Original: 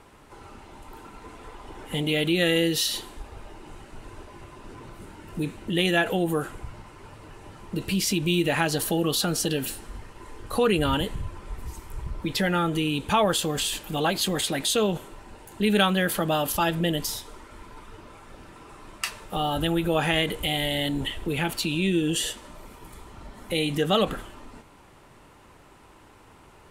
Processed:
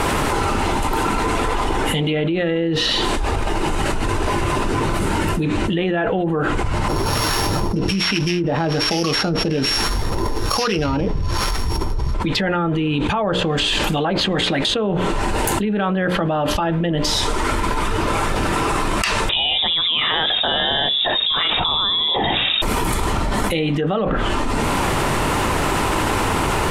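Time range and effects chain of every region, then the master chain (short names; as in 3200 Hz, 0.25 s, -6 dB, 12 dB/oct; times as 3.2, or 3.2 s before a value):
6.88–12.14 sample sorter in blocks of 8 samples + harmonic tremolo 1.2 Hz, crossover 950 Hz
19.29–22.62 compressor 2:1, threshold -30 dBFS + inverted band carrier 3700 Hz
whole clip: notches 60/120/180/240/300/360/420/480/540/600 Hz; treble ducked by the level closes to 1500 Hz, closed at -20.5 dBFS; fast leveller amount 100%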